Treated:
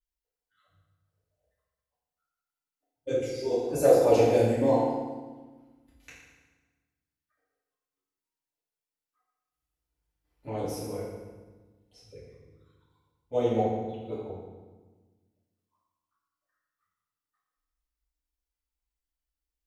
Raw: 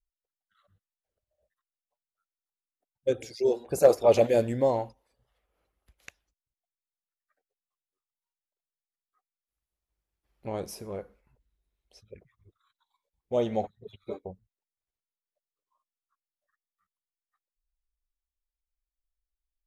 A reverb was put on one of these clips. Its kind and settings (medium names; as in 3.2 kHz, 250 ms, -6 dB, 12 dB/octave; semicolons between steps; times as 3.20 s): FDN reverb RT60 1.3 s, low-frequency decay 1.45×, high-frequency decay 0.8×, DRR -9.5 dB; trim -8.5 dB